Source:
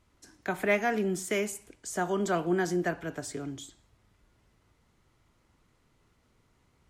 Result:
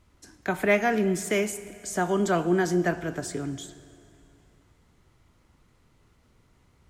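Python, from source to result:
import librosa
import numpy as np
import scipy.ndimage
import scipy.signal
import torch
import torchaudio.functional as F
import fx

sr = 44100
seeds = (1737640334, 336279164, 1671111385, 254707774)

y = fx.low_shelf(x, sr, hz=200.0, db=4.0)
y = fx.rev_plate(y, sr, seeds[0], rt60_s=2.8, hf_ratio=0.95, predelay_ms=0, drr_db=15.0)
y = y * 10.0 ** (3.5 / 20.0)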